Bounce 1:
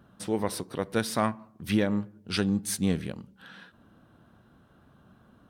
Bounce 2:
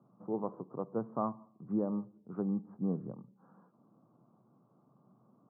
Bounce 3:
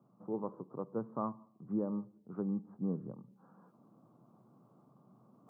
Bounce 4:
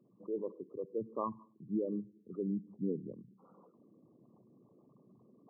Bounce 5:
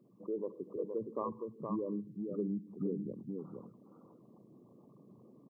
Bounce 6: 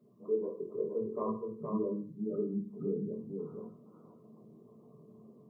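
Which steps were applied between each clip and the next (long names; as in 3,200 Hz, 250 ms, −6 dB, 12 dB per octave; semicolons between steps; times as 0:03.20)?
Chebyshev band-pass filter 120–1,200 Hz, order 5; level −6.5 dB
dynamic equaliser 710 Hz, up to −7 dB, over −59 dBFS, Q 6.1; reversed playback; upward compression, threshold −54 dBFS; reversed playback; level −2 dB
spectral envelope exaggerated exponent 3
downward compressor 3 to 1, threshold −37 dBFS, peak gain reduction 6.5 dB; single-tap delay 468 ms −4.5 dB; level +3 dB
convolution reverb RT60 0.40 s, pre-delay 4 ms, DRR −3.5 dB; level −4 dB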